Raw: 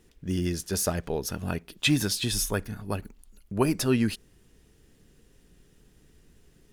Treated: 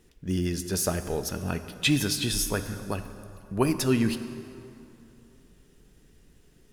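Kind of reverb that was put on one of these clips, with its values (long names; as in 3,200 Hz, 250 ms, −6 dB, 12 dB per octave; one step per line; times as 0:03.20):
dense smooth reverb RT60 2.8 s, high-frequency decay 0.65×, DRR 9.5 dB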